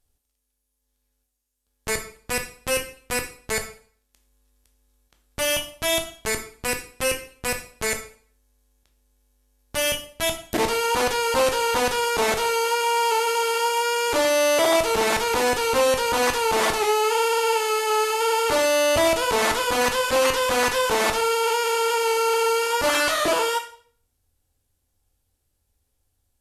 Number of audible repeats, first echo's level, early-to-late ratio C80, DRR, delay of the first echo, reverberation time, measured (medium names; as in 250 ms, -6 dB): no echo, no echo, 14.0 dB, 4.5 dB, no echo, 0.50 s